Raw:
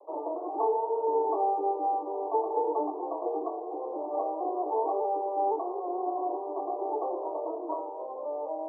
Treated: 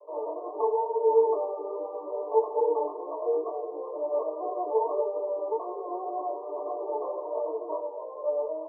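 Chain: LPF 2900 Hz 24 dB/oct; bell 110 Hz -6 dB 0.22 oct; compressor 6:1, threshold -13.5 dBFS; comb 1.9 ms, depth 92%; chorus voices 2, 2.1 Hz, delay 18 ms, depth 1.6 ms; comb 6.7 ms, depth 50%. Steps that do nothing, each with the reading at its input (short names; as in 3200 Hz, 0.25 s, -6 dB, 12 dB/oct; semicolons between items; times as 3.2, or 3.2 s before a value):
LPF 2900 Hz: input band ends at 1200 Hz; bell 110 Hz: input band starts at 270 Hz; compressor, threshold -13.5 dBFS: input peak -16.0 dBFS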